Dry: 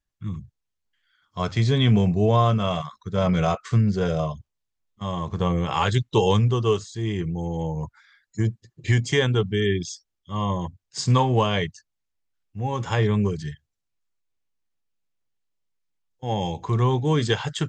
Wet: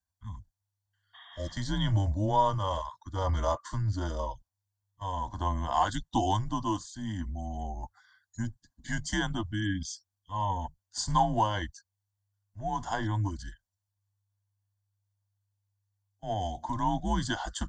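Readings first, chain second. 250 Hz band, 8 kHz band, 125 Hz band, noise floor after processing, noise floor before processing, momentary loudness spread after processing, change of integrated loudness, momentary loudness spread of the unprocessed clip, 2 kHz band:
-9.5 dB, -3.0 dB, -10.5 dB, under -85 dBFS, -80 dBFS, 15 LU, -8.5 dB, 15 LU, -7.5 dB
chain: frequency shift -100 Hz; spectral replace 1.17–1.49 s, 680–3800 Hz after; static phaser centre 1 kHz, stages 4; comb of notches 1.3 kHz

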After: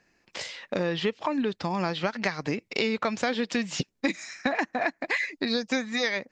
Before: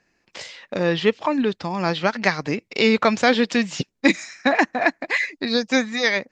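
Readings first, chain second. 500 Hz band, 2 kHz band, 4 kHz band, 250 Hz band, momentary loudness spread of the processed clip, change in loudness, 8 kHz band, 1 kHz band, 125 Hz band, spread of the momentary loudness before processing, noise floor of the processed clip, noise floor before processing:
-8.0 dB, -8.0 dB, -6.5 dB, -7.5 dB, 5 LU, -8.0 dB, -5.0 dB, -7.5 dB, -5.5 dB, 9 LU, -73 dBFS, -71 dBFS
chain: compression 6:1, threshold -24 dBFS, peak gain reduction 12.5 dB

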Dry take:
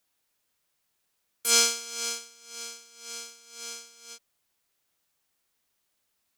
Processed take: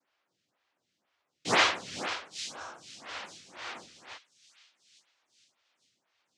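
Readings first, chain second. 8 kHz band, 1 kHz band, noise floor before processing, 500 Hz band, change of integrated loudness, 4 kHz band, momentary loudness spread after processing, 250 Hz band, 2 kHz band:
-14.5 dB, +6.5 dB, -77 dBFS, +2.5 dB, -5.0 dB, -4.0 dB, 24 LU, +6.5 dB, +5.5 dB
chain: noise-vocoded speech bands 1; band-stop 440 Hz, Q 12; time-frequency box 2.48–2.83 s, 1.7–5.2 kHz -16 dB; distance through air 130 m; feedback echo behind a high-pass 854 ms, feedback 35%, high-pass 3.1 kHz, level -12.5 dB; lamp-driven phase shifter 2 Hz; trim +5.5 dB

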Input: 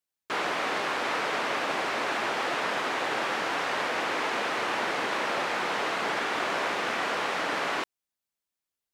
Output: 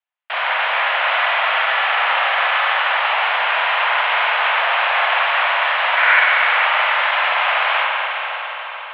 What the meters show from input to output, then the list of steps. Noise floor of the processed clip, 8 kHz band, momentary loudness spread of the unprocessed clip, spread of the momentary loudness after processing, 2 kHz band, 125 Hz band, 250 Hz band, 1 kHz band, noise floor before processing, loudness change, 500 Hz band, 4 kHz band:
-30 dBFS, under -20 dB, 0 LU, 7 LU, +14.5 dB, under -40 dB, under -30 dB, +12.0 dB, under -85 dBFS, +12.5 dB, +5.5 dB, +12.5 dB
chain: Chebyshev shaper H 6 -8 dB, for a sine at -15.5 dBFS; time-frequency box 5.97–6.21 s, 1.1–2.3 kHz +9 dB; echo that smears into a reverb 507 ms, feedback 48%, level -11 dB; spring tank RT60 3.6 s, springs 43/47 ms, chirp 60 ms, DRR -3 dB; mistuned SSB +220 Hz 400–3000 Hz; trim +4.5 dB

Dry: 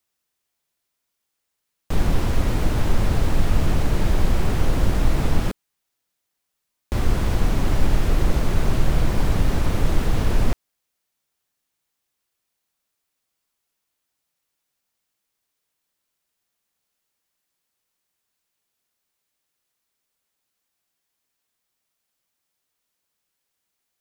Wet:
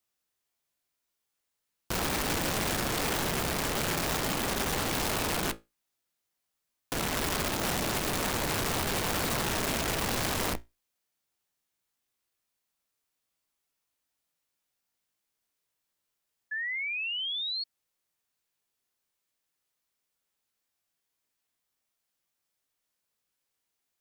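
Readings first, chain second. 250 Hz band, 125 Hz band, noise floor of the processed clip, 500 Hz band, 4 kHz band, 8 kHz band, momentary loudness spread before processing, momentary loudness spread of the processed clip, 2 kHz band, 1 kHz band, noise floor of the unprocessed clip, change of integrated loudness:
-7.5 dB, -14.5 dB, -83 dBFS, -4.0 dB, +5.0 dB, +6.0 dB, 4 LU, 5 LU, +2.5 dB, -1.0 dB, -79 dBFS, -6.0 dB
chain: feedback comb 56 Hz, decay 0.21 s, harmonics all, mix 80%; integer overflow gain 25.5 dB; painted sound rise, 16.51–17.64 s, 1.7–4.4 kHz -33 dBFS

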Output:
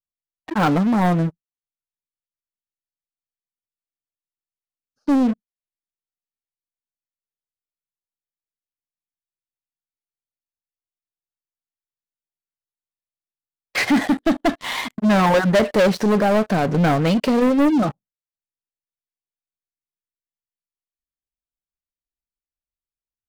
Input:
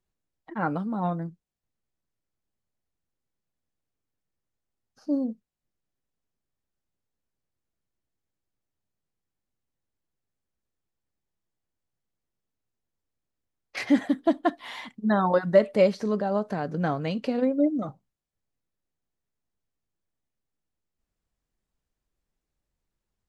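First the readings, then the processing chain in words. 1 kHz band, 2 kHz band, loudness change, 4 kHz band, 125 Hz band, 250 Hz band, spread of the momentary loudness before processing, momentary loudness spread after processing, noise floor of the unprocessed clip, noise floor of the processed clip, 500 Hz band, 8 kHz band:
+8.5 dB, +11.0 dB, +7.0 dB, +13.0 dB, +11.0 dB, +8.5 dB, 16 LU, 10 LU, -85 dBFS, under -85 dBFS, +5.0 dB, no reading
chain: spectral noise reduction 7 dB; vibrato 1.3 Hz 51 cents; waveshaping leveller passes 5; trim -4.5 dB

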